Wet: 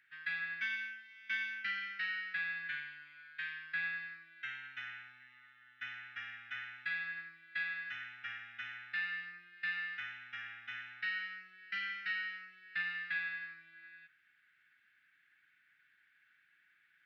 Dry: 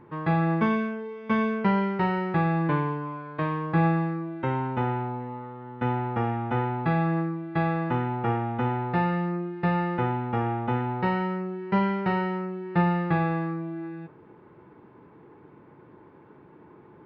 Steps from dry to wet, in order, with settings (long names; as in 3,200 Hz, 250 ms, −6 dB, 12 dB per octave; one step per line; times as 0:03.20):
elliptic high-pass filter 1,600 Hz, stop band 40 dB